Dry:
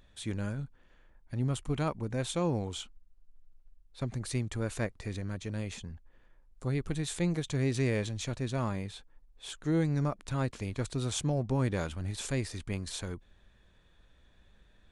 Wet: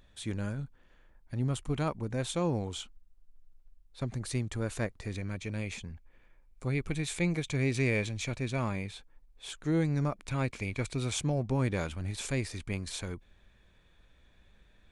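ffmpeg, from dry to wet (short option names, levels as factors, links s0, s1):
-af "asetnsamples=n=441:p=0,asendcmd='5.16 equalizer g 12;8.93 equalizer g 5;10.27 equalizer g 14;11.16 equalizer g 6.5',equalizer=f=2300:t=o:w=0.22:g=0.5"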